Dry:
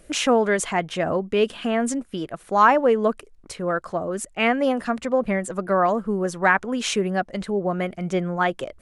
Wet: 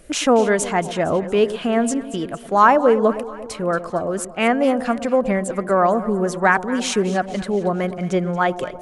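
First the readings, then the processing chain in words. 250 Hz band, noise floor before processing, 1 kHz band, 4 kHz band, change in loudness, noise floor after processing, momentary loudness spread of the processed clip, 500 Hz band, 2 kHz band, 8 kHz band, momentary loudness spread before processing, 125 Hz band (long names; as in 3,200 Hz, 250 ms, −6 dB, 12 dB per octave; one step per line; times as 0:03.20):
+4.0 dB, −51 dBFS, +3.0 dB, +1.0 dB, +3.0 dB, −35 dBFS, 9 LU, +3.5 dB, +1.5 dB, +3.0 dB, 9 LU, +3.5 dB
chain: dynamic equaliser 2,600 Hz, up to −4 dB, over −36 dBFS, Q 1
on a send: delay that swaps between a low-pass and a high-pass 115 ms, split 840 Hz, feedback 72%, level −12 dB
on the sum: level +3.5 dB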